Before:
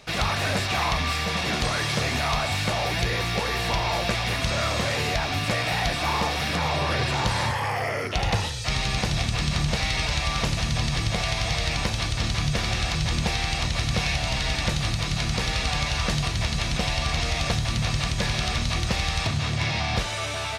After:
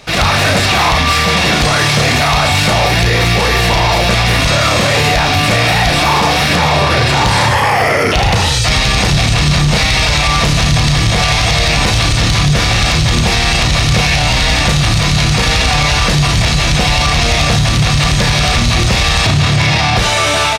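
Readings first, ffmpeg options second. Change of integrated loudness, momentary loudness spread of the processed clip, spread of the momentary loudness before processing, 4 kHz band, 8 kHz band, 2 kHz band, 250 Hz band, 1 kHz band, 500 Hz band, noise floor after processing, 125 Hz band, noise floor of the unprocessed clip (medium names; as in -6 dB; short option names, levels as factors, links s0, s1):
+14.0 dB, 1 LU, 2 LU, +14.0 dB, +14.5 dB, +14.5 dB, +14.0 dB, +14.5 dB, +14.0 dB, -13 dBFS, +14.0 dB, -29 dBFS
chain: -filter_complex "[0:a]dynaudnorm=f=120:g=3:m=3.98,asplit=2[s0][s1];[s1]adelay=34,volume=0.447[s2];[s0][s2]amix=inputs=2:normalize=0,asplit=2[s3][s4];[s4]acontrast=85,volume=1[s5];[s3][s5]amix=inputs=2:normalize=0,alimiter=limit=0.596:level=0:latency=1:release=57"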